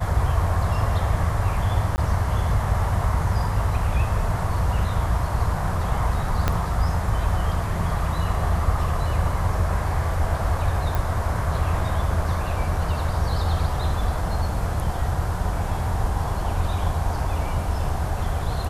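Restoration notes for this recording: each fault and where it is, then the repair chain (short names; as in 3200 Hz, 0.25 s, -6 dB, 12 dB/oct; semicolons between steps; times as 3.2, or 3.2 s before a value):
1.96–1.98 gap 19 ms
6.48 pop -7 dBFS
10.95 pop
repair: de-click; interpolate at 1.96, 19 ms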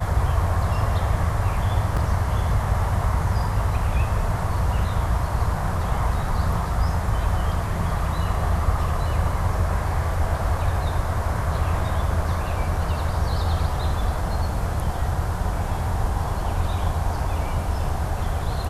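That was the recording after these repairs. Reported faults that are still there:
6.48 pop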